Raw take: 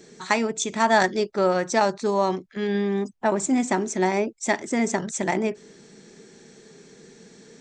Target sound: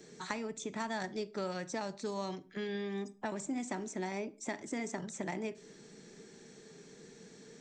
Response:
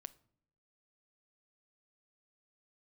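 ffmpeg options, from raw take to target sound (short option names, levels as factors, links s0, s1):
-filter_complex "[0:a]acrossover=split=240|2100[s0][s1][s2];[s0]acompressor=threshold=0.0141:ratio=4[s3];[s1]acompressor=threshold=0.02:ratio=4[s4];[s2]acompressor=threshold=0.00891:ratio=4[s5];[s3][s4][s5]amix=inputs=3:normalize=0[s6];[1:a]atrim=start_sample=2205,afade=t=out:st=0.23:d=0.01,atrim=end_sample=10584[s7];[s6][s7]afir=irnorm=-1:irlink=0"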